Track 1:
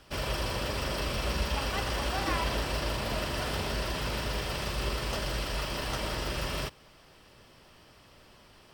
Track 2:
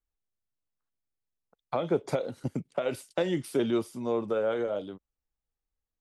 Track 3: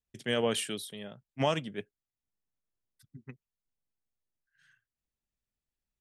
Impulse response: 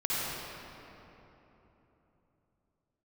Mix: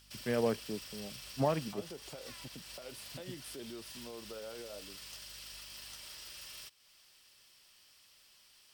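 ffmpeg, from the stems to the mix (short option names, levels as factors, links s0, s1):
-filter_complex "[0:a]tiltshelf=f=1400:g=-9,acompressor=threshold=0.00631:ratio=2,volume=0.178[s0];[1:a]aeval=exprs='val(0)+0.00316*(sin(2*PI*50*n/s)+sin(2*PI*2*50*n/s)/2+sin(2*PI*3*50*n/s)/3+sin(2*PI*4*50*n/s)/4+sin(2*PI*5*50*n/s)/5)':c=same,volume=0.2[s1];[2:a]lowpass=f=1200:p=1,afwtdn=0.00708,volume=0.891[s2];[s0][s1]amix=inputs=2:normalize=0,highshelf=f=3000:g=10,alimiter=level_in=4.22:limit=0.0631:level=0:latency=1:release=151,volume=0.237,volume=1[s3];[s2][s3]amix=inputs=2:normalize=0"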